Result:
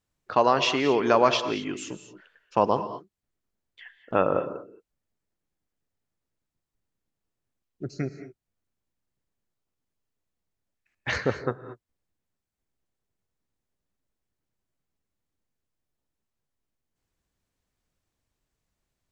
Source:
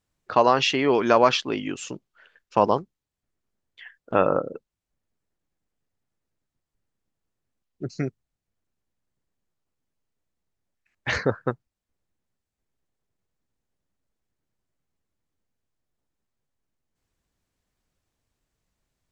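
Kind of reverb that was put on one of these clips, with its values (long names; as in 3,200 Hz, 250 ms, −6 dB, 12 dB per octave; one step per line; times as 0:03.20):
reverb whose tail is shaped and stops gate 250 ms rising, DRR 11 dB
level −2.5 dB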